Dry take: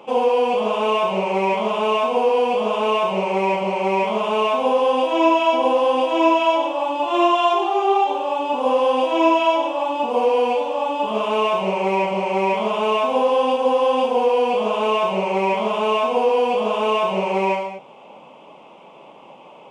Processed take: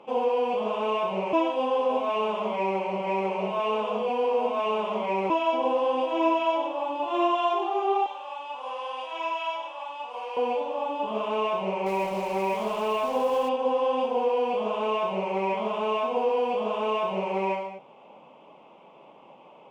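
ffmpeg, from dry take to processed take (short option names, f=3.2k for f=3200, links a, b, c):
-filter_complex "[0:a]asettb=1/sr,asplit=3[a][b][c];[a]atrim=end=8.064[d];[b]atrim=start=8.06:end=10.37,asetpts=PTS-STARTPTS,afade=t=in:d=0.004:c=qsin,afade=t=out:st=2.306:d=0.004:c=qsin,highpass=1.1k[e];[c]atrim=start=10.366[f];[d][e]acrossfade=d=0.004:c1=hsin:c2=qsin[g];[g][f]acrossfade=d=0.004:c1=qsin:c2=hsin,asettb=1/sr,asplit=3[h][i][j];[h]atrim=end=11.864[k];[i]atrim=start=11.86:end=13.49,asetpts=PTS-STARTPTS,afade=t=in:d=0.004:c=qsin,afade=t=out:st=1.626:d=0.004:c=qsin,acrusher=bits=6:dc=4:mix=0:aa=0.000001[l];[j]atrim=start=13.486[m];[k][l]acrossfade=d=0.004:c1=hsin:c2=qsin[n];[n][m]acrossfade=d=0.004:c1=qsin:c2=hsin,asplit=3[o][p][q];[o]atrim=end=1.332[r];[p]atrim=start=1.328:end=5.302,asetpts=PTS-STARTPTS,areverse[s];[q]atrim=start=5.298[t];[r][s]acrossfade=d=0.004:c1=hsin:c2=hsin[u];[u][t]acrossfade=d=0.004:c1=hsin:c2=hsin,lowpass=f=3.2k:p=1,volume=-7dB"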